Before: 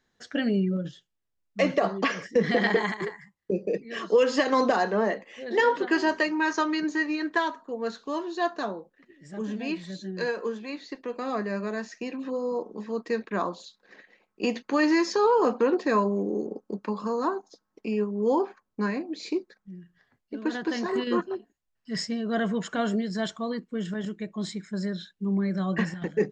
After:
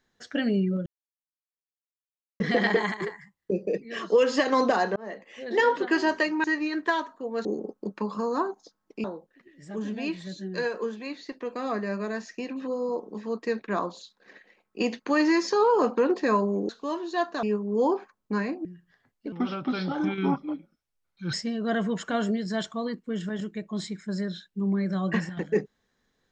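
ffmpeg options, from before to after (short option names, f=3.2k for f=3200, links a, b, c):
-filter_complex "[0:a]asplit=12[a][b][c][d][e][f][g][h][i][j][k][l];[a]atrim=end=0.86,asetpts=PTS-STARTPTS,afade=t=out:st=0.856:d=0.004:c=hsin[m];[b]atrim=start=0.86:end=2.4,asetpts=PTS-STARTPTS,volume=0[n];[c]atrim=start=2.4:end=4.96,asetpts=PTS-STARTPTS,afade=t=in:d=0.004:c=hsin,afade=t=out:st=2.556:d=0.004:c=hsin[o];[d]atrim=start=4.96:end=6.442,asetpts=PTS-STARTPTS,afade=t=in:d=0.43[p];[e]atrim=start=6.918:end=7.932[q];[f]atrim=start=16.318:end=17.912[r];[g]atrim=start=8.668:end=16.322[s];[h]atrim=start=7.928:end=8.672[t];[i]atrim=start=17.908:end=19.132[u];[j]atrim=start=19.718:end=20.394[v];[k]atrim=start=20.39:end=21.98,asetpts=PTS-STARTPTS,asetrate=34839,aresample=44100,atrim=end_sample=88758,asetpts=PTS-STARTPTS[w];[l]atrim=start=21.976[x];[m][n][o][p]concat=n=4:v=0:a=1[y];[y][q]acrossfade=d=0.004:c1=hsin:c2=hsin[z];[z][r]acrossfade=d=0.004:c1=hsin:c2=hsin[aa];[aa][s]acrossfade=d=0.004:c1=hsin:c2=hsin[ab];[ab][t]acrossfade=d=0.004:c1=hsin:c2=hsin[ac];[ac][u]acrossfade=d=0.004:c1=hsin:c2=hsin[ad];[ad][v]acrossfade=d=0.004:c1=hsin:c2=hsin[ae];[ae][w]acrossfade=d=0.004:c1=hsin:c2=hsin[af];[af][x]acrossfade=d=0.004:c1=hsin:c2=hsin"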